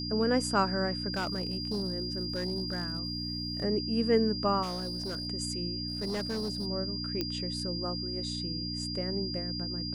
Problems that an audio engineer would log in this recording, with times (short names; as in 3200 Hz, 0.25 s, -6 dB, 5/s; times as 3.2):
hum 60 Hz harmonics 5 -38 dBFS
tone 4800 Hz -36 dBFS
1.13–3.64 clipped -27.5 dBFS
4.62–5.27 clipped -31.5 dBFS
5.88–6.67 clipped -29.5 dBFS
7.21 pop -17 dBFS